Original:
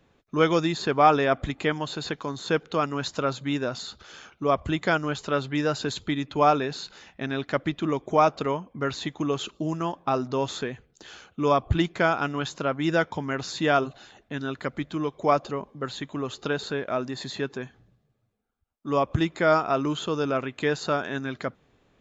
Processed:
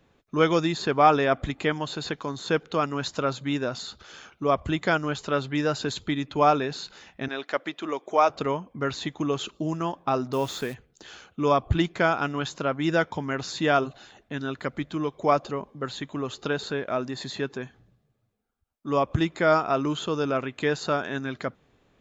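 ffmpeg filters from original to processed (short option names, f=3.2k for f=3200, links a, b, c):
-filter_complex "[0:a]asettb=1/sr,asplit=3[a][b][c];[a]atrim=end=7.284[d];[b]atrim=start=7.28:end=8.3,asetpts=PTS-STARTPTS,afade=t=in:d=0.004:c=qsin,afade=t=out:st=1.016:d=0.004:c=qsin,highpass=420[e];[c]atrim=start=8.296[f];[d][e]acrossfade=d=0.004:c1=hsin:c2=qsin[g];[g][f]acrossfade=d=0.004:c1=qsin:c2=hsin,asplit=3[h][i][j];[h]afade=t=out:st=10.32:d=0.02[k];[i]acrusher=bits=8:dc=4:mix=0:aa=0.000001,afade=t=in:st=10.32:d=0.02,afade=t=out:st=10.73:d=0.02[l];[j]afade=t=in:st=10.73:d=0.02[m];[k][l][m]amix=inputs=3:normalize=0"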